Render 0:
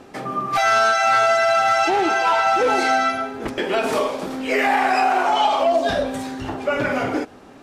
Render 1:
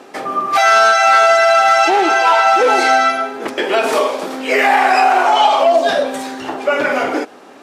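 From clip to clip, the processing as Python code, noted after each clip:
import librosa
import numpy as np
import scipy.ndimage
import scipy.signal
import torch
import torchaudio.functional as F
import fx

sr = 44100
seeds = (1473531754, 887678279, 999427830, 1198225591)

y = scipy.signal.sosfilt(scipy.signal.butter(2, 330.0, 'highpass', fs=sr, output='sos'), x)
y = y * librosa.db_to_amplitude(6.5)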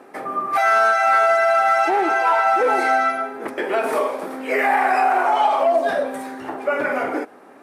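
y = fx.band_shelf(x, sr, hz=4500.0, db=-10.0, octaves=1.7)
y = y * librosa.db_to_amplitude(-5.5)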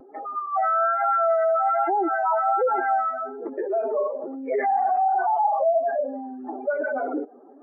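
y = fx.spec_expand(x, sr, power=2.6)
y = scipy.ndimage.gaussian_filter1d(y, 4.5, mode='constant')
y = fx.vibrato(y, sr, rate_hz=1.2, depth_cents=41.0)
y = y * librosa.db_to_amplitude(-2.5)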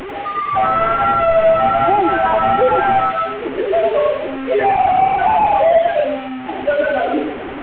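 y = fx.delta_mod(x, sr, bps=16000, step_db=-30.5)
y = y + 10.0 ** (-6.5 / 20.0) * np.pad(y, (int(100 * sr / 1000.0), 0))[:len(y)]
y = y * librosa.db_to_amplitude(8.5)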